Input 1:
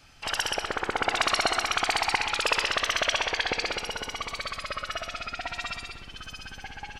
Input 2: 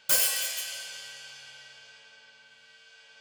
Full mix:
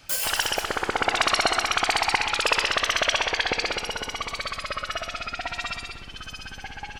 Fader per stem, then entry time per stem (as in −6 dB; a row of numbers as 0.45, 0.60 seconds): +3.0, −4.0 decibels; 0.00, 0.00 seconds